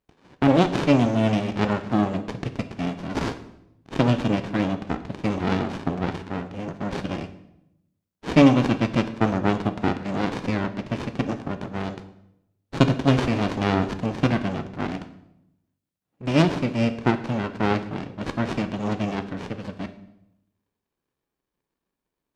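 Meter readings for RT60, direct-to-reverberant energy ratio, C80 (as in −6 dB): 0.85 s, 9.0 dB, 15.0 dB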